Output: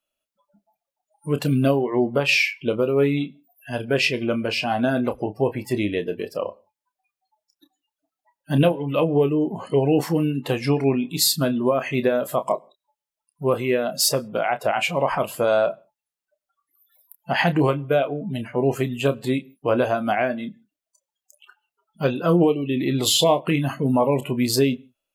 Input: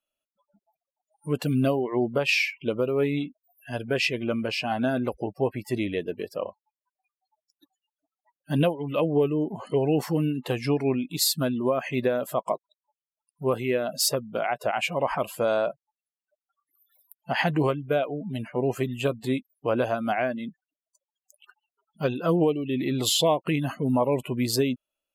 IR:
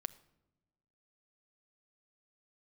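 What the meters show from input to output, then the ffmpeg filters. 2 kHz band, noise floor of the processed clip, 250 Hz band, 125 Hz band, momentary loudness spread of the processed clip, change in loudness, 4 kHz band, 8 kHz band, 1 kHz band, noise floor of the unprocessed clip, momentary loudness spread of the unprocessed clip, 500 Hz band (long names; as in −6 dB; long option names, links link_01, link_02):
+4.5 dB, below −85 dBFS, +4.5 dB, +4.5 dB, 8 LU, +4.5 dB, +4.5 dB, +4.5 dB, +4.5 dB, below −85 dBFS, 8 LU, +4.5 dB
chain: -filter_complex "[0:a]asplit=2[link_01][link_02];[1:a]atrim=start_sample=2205,afade=type=out:start_time=0.21:duration=0.01,atrim=end_sample=9702,adelay=29[link_03];[link_02][link_03]afir=irnorm=-1:irlink=0,volume=-8dB[link_04];[link_01][link_04]amix=inputs=2:normalize=0,volume=4dB"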